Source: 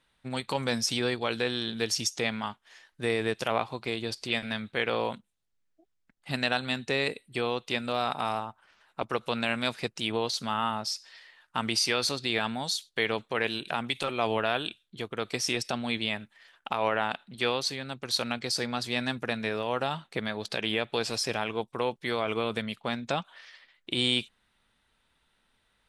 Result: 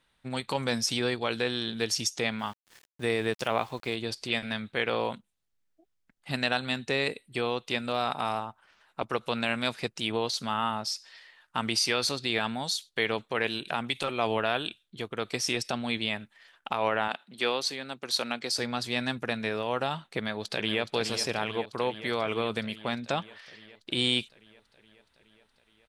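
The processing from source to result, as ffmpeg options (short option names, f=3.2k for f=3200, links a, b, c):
-filter_complex "[0:a]asettb=1/sr,asplit=3[a][b][c];[a]atrim=end=2.394[d];[b]atrim=start=2.39:end=3.95,asetpts=PTS-STARTPTS,afade=t=in:d=0.004:c=qsin,afade=t=out:st=1.556:d=0.004:c=qsin,aeval=exprs='val(0)*gte(abs(val(0)),0.00355)':c=same[e];[c]atrim=start=3.946[f];[d][e]acrossfade=d=0.004:c1=hsin:c2=qsin[g];[g][f]acrossfade=d=0.004:c1=qsin:c2=hsin,asettb=1/sr,asplit=3[h][i][j];[h]atrim=end=17.084[k];[i]atrim=start=17.08:end=18.59,asetpts=PTS-STARTPTS,afade=t=in:d=0.004:c=qsin,afade=t=out:st=1.506:d=0.004:c=qsin,highpass=220[l];[j]atrim=start=18.586[m];[k][l]acrossfade=d=0.004:c1=hsin:c2=qsin[n];[n][m]acrossfade=d=0.004:c1=qsin:c2=hsin,asplit=2[o][p];[p]afade=t=in:st=20.14:d=0.01,afade=t=out:st=20.81:d=0.01,aecho=0:1:420|840|1260|1680|2100|2520|2940|3360|3780|4200|4620|5040:0.334965|0.251224|0.188418|0.141314|0.105985|0.0794889|0.0596167|0.0447125|0.0335344|0.0251508|0.0188631|0.0141473[q];[o][q]amix=inputs=2:normalize=0"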